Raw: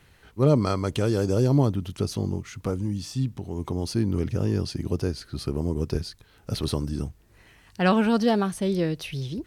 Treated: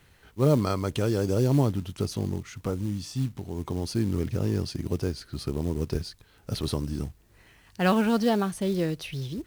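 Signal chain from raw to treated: companded quantiser 6-bit; trim -2 dB

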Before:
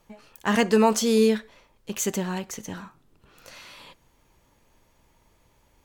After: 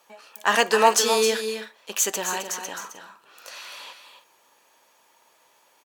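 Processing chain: high-pass 640 Hz 12 dB/octave; band-stop 2.1 kHz, Q 13; multi-tap echo 263/309 ms -8.5/-16.5 dB; trim +6.5 dB

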